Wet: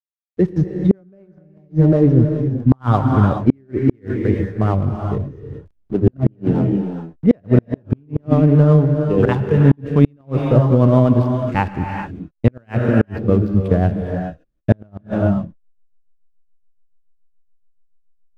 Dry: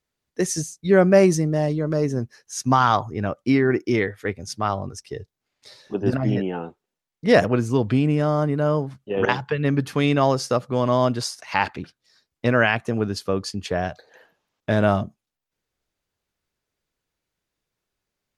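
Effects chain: LPF 4100 Hz 24 dB/oct; tilt -4 dB/oct; backlash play -34 dBFS; rotary speaker horn 8 Hz; non-linear reverb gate 0.45 s rising, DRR 4.5 dB; flipped gate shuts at -4 dBFS, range -40 dB; gain +3 dB

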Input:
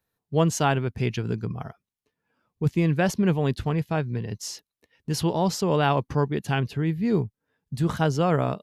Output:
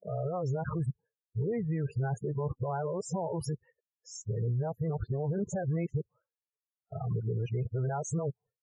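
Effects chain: whole clip reversed; expander -43 dBFS; ten-band EQ 125 Hz +9 dB, 250 Hz -9 dB, 500 Hz +12 dB, 1000 Hz +3 dB, 2000 Hz +4 dB, 4000 Hz -10 dB, 8000 Hz +7 dB; limiter -19 dBFS, peak gain reduction 17 dB; dynamic EQ 500 Hz, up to -3 dB, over -44 dBFS, Q 4.4; loudest bins only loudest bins 16; gain -5 dB

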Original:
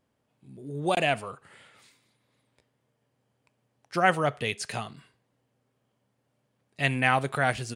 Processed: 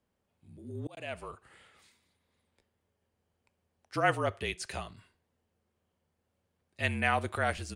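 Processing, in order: frequency shift -38 Hz; 0.71–1.22 auto swell 0.628 s; gain -5 dB

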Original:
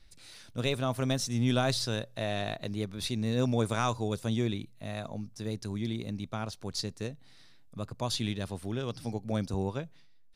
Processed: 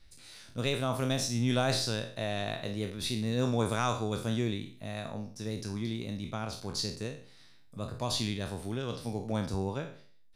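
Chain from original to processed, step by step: spectral trails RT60 0.47 s; gain -1.5 dB

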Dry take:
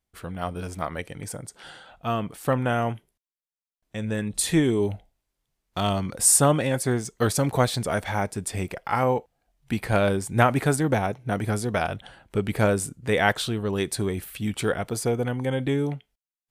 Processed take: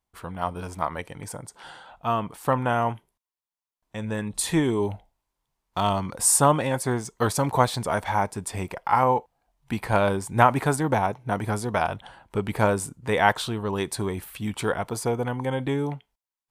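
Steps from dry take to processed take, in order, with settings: bell 960 Hz +11 dB 0.6 oct; gain -2 dB

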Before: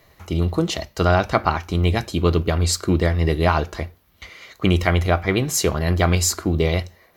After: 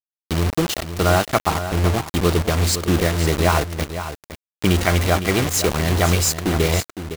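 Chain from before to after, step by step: 1.4–2.05 LPF 1200 Hz 24 dB/oct; bit-crush 4-bit; echo 0.51 s -10.5 dB

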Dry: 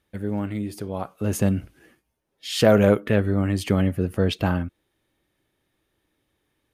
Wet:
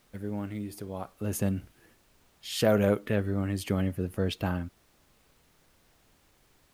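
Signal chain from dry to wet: high shelf 11000 Hz +9.5 dB; added noise pink -57 dBFS; gain -7.5 dB

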